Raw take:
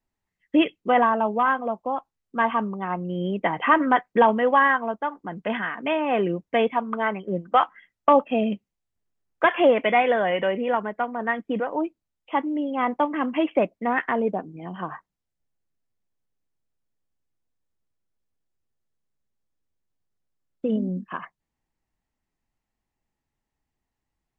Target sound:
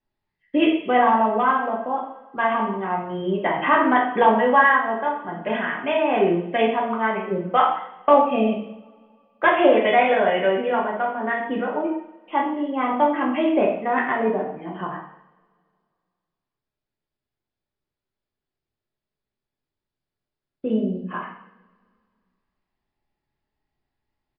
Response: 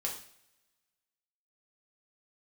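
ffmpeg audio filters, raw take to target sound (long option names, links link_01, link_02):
-filter_complex "[1:a]atrim=start_sample=2205,asetrate=33516,aresample=44100[link_01];[0:a][link_01]afir=irnorm=-1:irlink=0,aresample=11025,aresample=44100,volume=-1.5dB"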